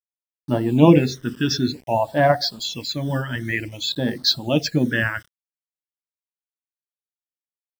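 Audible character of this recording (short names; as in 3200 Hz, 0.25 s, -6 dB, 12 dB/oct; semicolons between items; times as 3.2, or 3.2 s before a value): a quantiser's noise floor 8-bit, dither none; phasing stages 12, 0.54 Hz, lowest notch 710–2500 Hz; noise-modulated level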